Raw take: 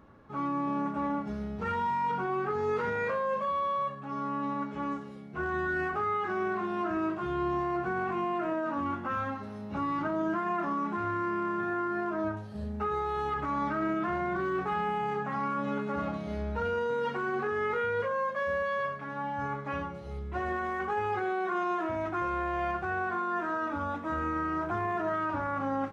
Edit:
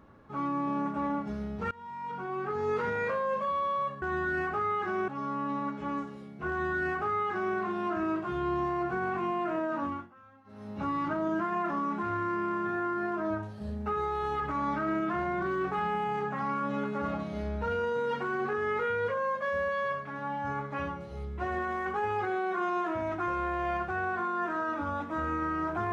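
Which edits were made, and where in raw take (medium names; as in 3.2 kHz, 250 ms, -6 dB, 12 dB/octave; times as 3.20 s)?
1.71–2.72 s: fade in, from -23.5 dB
5.44–6.50 s: copy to 4.02 s
8.77–9.66 s: dip -23.5 dB, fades 0.28 s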